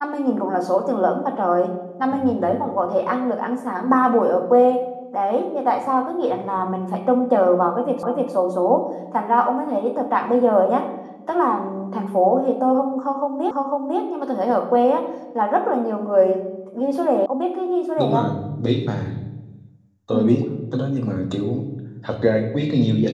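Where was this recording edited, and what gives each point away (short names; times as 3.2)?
8.03 repeat of the last 0.3 s
13.51 repeat of the last 0.5 s
17.26 sound cut off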